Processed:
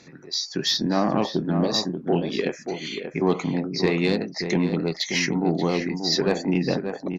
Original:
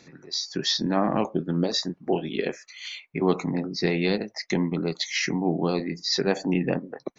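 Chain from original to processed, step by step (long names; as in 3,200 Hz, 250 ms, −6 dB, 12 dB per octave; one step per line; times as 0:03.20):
harmonic generator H 5 −24 dB, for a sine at −7.5 dBFS
slap from a distant wall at 100 metres, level −7 dB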